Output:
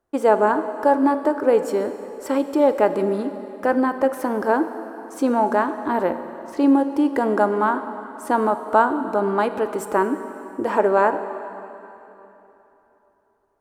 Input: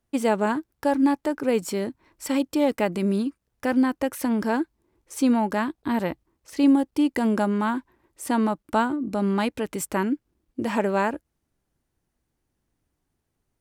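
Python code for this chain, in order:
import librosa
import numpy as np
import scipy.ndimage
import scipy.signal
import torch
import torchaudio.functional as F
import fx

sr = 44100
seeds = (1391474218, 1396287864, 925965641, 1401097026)

y = fx.band_shelf(x, sr, hz=710.0, db=12.5, octaves=2.7)
y = fx.rev_plate(y, sr, seeds[0], rt60_s=3.3, hf_ratio=0.85, predelay_ms=0, drr_db=9.0)
y = y * librosa.db_to_amplitude(-5.5)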